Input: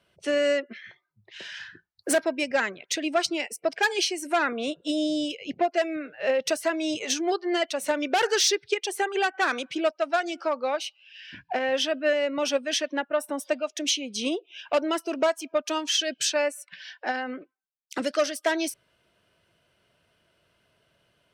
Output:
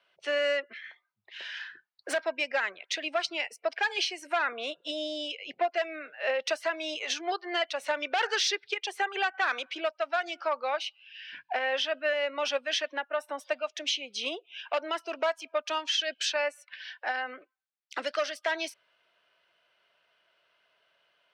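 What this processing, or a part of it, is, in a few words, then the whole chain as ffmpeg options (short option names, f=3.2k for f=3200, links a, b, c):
DJ mixer with the lows and highs turned down: -filter_complex "[0:a]highpass=f=440:p=1,acrossover=split=540 4800:gain=0.224 1 0.126[a][b][c];[a][b][c]amix=inputs=3:normalize=0,alimiter=limit=-19.5dB:level=0:latency=1:release=118,volume=1dB"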